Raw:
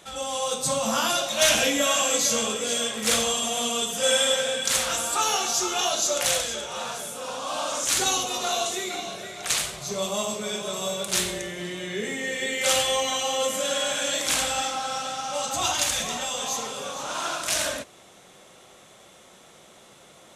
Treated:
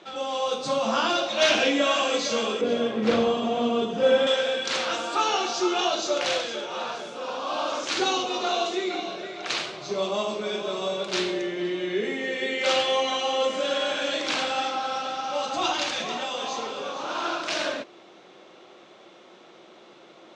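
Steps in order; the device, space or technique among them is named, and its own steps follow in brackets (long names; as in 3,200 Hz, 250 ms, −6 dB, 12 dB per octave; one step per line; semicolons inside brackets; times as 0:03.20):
0:02.61–0:04.27: spectral tilt −4 dB per octave
kitchen radio (loudspeaker in its box 220–4,600 Hz, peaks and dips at 340 Hz +9 dB, 1,900 Hz −3 dB, 3,400 Hz −3 dB)
level +1.5 dB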